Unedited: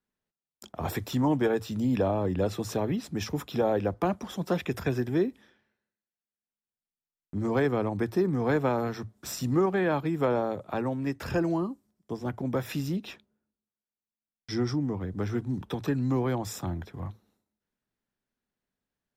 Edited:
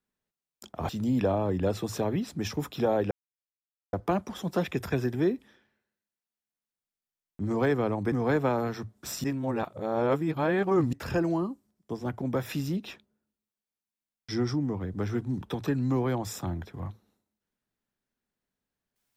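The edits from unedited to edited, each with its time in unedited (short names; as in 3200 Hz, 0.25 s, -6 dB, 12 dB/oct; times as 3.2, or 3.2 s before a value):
0.89–1.65 cut
3.87 insert silence 0.82 s
8.06–8.32 cut
9.44–11.13 reverse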